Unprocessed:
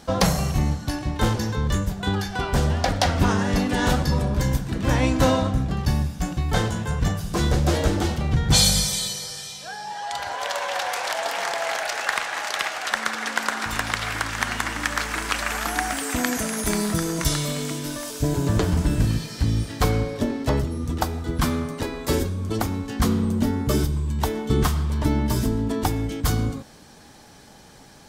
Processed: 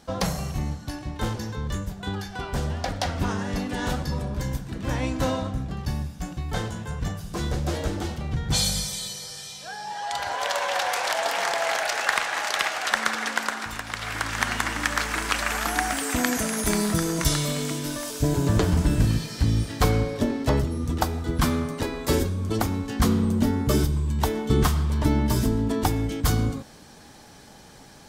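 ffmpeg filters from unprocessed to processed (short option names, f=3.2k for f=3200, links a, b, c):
-af "volume=10dB,afade=t=in:st=8.98:d=1.35:silence=0.421697,afade=t=out:st=13.12:d=0.72:silence=0.316228,afade=t=in:st=13.84:d=0.53:silence=0.354813"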